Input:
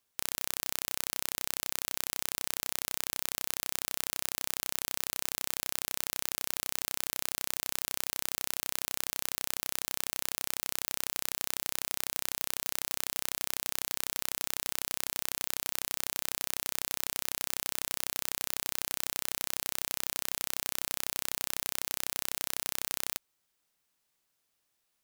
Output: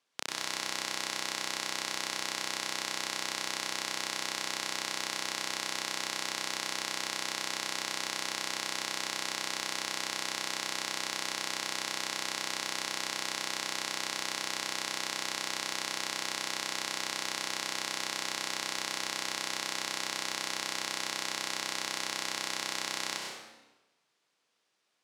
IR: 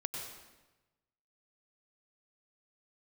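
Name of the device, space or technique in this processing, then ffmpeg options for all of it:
supermarket ceiling speaker: -filter_complex "[0:a]highpass=230,lowpass=5500[link_01];[1:a]atrim=start_sample=2205[link_02];[link_01][link_02]afir=irnorm=-1:irlink=0,volume=5dB"

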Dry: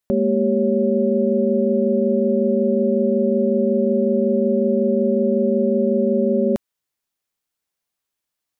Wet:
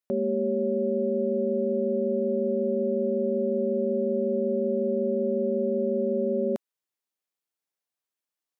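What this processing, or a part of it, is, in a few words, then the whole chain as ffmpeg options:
filter by subtraction: -filter_complex "[0:a]asplit=2[link_01][link_02];[link_02]lowpass=380,volume=-1[link_03];[link_01][link_03]amix=inputs=2:normalize=0,volume=-8.5dB"

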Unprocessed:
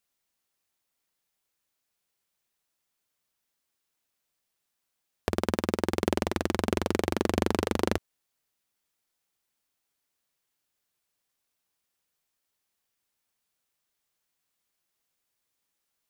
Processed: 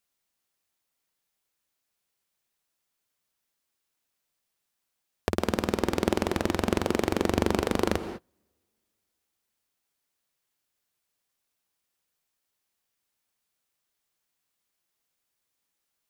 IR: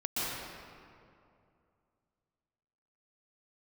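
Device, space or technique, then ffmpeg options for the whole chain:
keyed gated reverb: -filter_complex "[0:a]asplit=3[link_01][link_02][link_03];[1:a]atrim=start_sample=2205[link_04];[link_02][link_04]afir=irnorm=-1:irlink=0[link_05];[link_03]apad=whole_len=709674[link_06];[link_05][link_06]sidechaingate=range=-33dB:threshold=-53dB:ratio=16:detection=peak,volume=-16.5dB[link_07];[link_01][link_07]amix=inputs=2:normalize=0"

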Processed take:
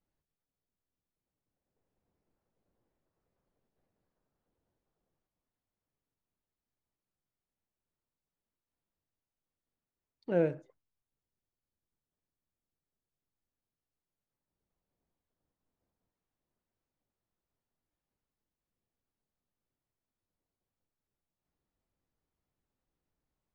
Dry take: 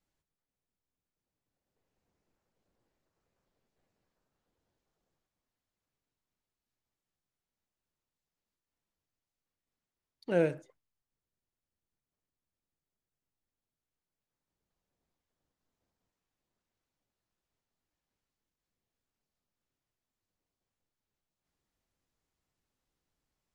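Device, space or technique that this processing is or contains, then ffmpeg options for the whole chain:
through cloth: -af "lowpass=6700,highshelf=frequency=1900:gain=-11.5"

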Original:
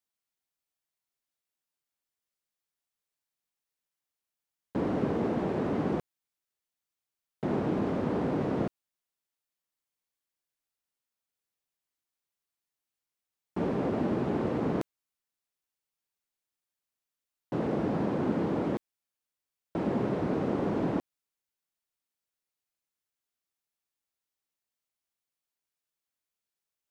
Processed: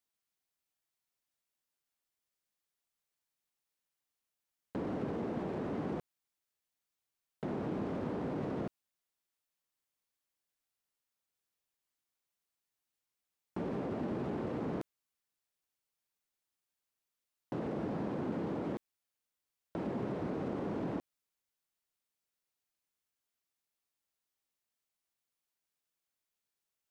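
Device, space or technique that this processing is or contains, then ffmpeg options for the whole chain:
de-esser from a sidechain: -filter_complex "[0:a]asplit=2[link_01][link_02];[link_02]highpass=frequency=4500:poles=1,apad=whole_len=1186679[link_03];[link_01][link_03]sidechaincompress=threshold=-57dB:ratio=8:attack=16:release=29"

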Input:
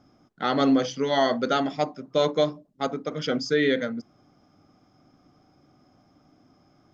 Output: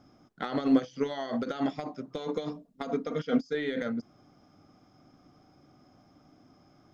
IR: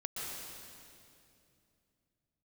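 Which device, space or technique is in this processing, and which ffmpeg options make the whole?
de-esser from a sidechain: -filter_complex "[0:a]asettb=1/sr,asplit=3[link_01][link_02][link_03];[link_01]atrim=end=2.164[link_04];[link_02]atrim=start=2.16:end=3.55,asetpts=PTS-STARTPTS,afade=type=in:duration=0.004:curve=qsin,afade=type=out:start_time=1.386:duration=0.004:curve=qsin,aecho=1:1:4.3:0.59,atrim=end_sample=61299[link_05];[link_03]atrim=start=3.546[link_06];[link_04][link_05]acrossfade=duration=0.004:curve1=hsin:curve2=qsin[link_07];[link_07][link_06]acrossfade=duration=0.004:curve1=qsin:curve2=hsin,asplit=2[link_08][link_09];[link_09]highpass=frequency=5100:width=0.5412,highpass=frequency=5100:width=1.3066,apad=whole_len=305911[link_10];[link_08][link_10]sidechaincompress=threshold=-58dB:ratio=16:attack=4.8:release=31"

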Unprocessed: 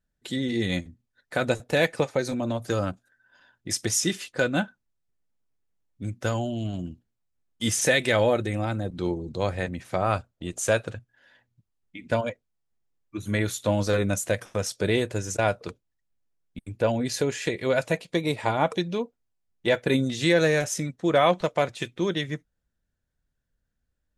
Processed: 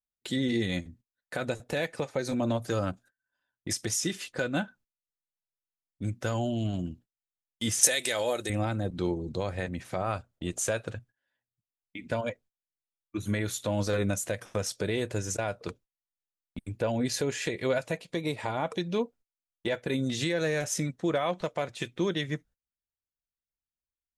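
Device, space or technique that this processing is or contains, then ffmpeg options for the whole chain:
stacked limiters: -filter_complex "[0:a]agate=range=-24dB:threshold=-51dB:ratio=16:detection=peak,alimiter=limit=-12.5dB:level=0:latency=1:release=266,alimiter=limit=-18.5dB:level=0:latency=1:release=197,asettb=1/sr,asplit=3[link_01][link_02][link_03];[link_01]atrim=end=7.834[link_04];[link_02]atrim=start=7.83:end=8.5,asetpts=PTS-STARTPTS,afade=type=in:duration=0.004:curve=qsin,afade=type=out:start_time=0.666:duration=0.004:curve=qsin,bass=frequency=250:gain=-12,treble=frequency=4000:gain=15[link_05];[link_03]atrim=start=8.496[link_06];[link_04][link_05]acrossfade=duration=0.004:curve1=hsin:curve2=qsin[link_07];[link_07][link_06]acrossfade=duration=0.004:curve1=qsin:curve2=hsin"

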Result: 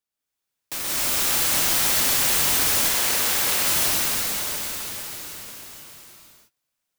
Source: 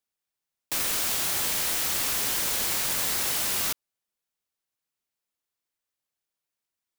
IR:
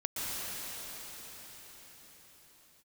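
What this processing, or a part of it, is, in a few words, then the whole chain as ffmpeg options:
cathedral: -filter_complex "[1:a]atrim=start_sample=2205[link_01];[0:a][link_01]afir=irnorm=-1:irlink=0,asettb=1/sr,asplit=3[link_02][link_03][link_04];[link_02]atrim=end=2.884[link_05];[link_03]atrim=start=2.88:end=3.67,asetpts=PTS-STARTPTS,afade=type=in:duration=0.004:curve=qsin,afade=type=out:start_time=0.786:duration=0.004:curve=qsin,bass=frequency=250:gain=-6,treble=frequency=4000:gain=-2[link_06];[link_04]atrim=start=3.666[link_07];[link_05][link_06]acrossfade=duration=0.004:curve1=hsin:curve2=qsin[link_08];[link_08][link_07]acrossfade=duration=0.004:curve1=qsin:curve2=hsin"

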